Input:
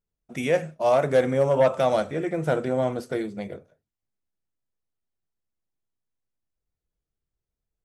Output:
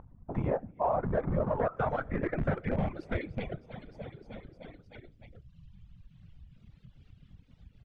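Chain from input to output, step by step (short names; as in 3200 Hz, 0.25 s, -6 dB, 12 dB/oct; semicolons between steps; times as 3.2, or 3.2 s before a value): resonant low shelf 160 Hz +11.5 dB, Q 1.5; feedback echo 0.305 s, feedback 59%, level -17 dB; whisperiser; reverb removal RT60 1.2 s; upward compressor, threshold -28 dBFS; in parallel at -5.5 dB: Schmitt trigger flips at -22 dBFS; on the sum: low-pass sweep 960 Hz -> 3100 Hz, 0.76–3.66; compressor 5:1, threshold -23 dBFS, peak gain reduction 10.5 dB; gain -3.5 dB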